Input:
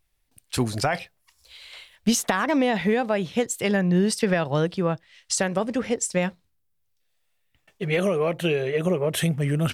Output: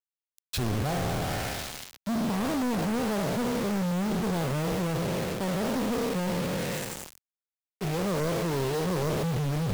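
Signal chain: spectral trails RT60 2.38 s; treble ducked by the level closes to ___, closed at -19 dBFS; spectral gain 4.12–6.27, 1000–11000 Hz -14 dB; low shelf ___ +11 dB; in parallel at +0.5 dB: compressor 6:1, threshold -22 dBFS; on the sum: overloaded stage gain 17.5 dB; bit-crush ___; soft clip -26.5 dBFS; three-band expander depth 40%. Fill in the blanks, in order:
780 Hz, 270 Hz, 4-bit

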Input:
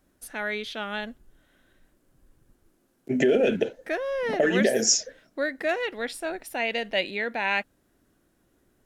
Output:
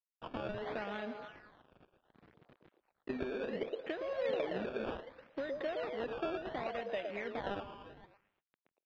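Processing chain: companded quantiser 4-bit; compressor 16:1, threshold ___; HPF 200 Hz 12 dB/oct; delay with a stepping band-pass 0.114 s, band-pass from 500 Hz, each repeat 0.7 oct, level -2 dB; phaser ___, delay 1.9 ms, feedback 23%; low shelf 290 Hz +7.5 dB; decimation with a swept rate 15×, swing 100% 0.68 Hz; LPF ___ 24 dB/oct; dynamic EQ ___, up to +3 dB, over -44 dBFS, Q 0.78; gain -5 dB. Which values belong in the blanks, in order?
-34 dBFS, 0.8 Hz, 3500 Hz, 530 Hz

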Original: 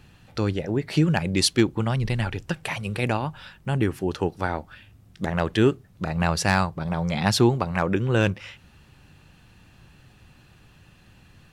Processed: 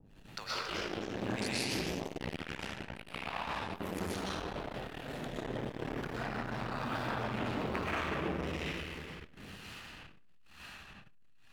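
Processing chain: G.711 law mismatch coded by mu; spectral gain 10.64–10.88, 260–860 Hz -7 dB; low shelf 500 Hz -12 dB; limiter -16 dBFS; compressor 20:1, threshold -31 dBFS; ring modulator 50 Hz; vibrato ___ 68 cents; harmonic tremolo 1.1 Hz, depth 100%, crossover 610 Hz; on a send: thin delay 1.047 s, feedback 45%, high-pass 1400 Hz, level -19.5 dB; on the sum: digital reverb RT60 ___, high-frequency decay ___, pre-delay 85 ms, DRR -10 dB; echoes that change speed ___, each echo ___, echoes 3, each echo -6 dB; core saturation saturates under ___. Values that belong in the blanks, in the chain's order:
11 Hz, 2.8 s, 0.5×, 0.318 s, +2 st, 1000 Hz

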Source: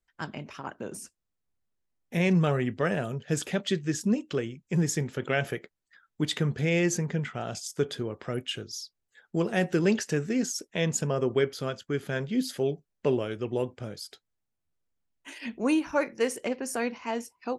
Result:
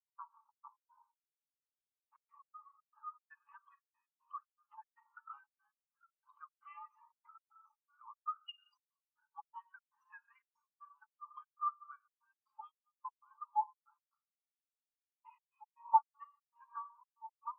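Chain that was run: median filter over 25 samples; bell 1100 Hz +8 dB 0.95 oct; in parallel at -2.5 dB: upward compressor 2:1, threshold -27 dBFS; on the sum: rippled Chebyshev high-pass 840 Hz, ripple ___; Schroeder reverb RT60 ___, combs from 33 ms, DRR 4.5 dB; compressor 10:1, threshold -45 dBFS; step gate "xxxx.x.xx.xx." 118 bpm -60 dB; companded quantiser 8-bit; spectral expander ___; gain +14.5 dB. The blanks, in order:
3 dB, 1 s, 4:1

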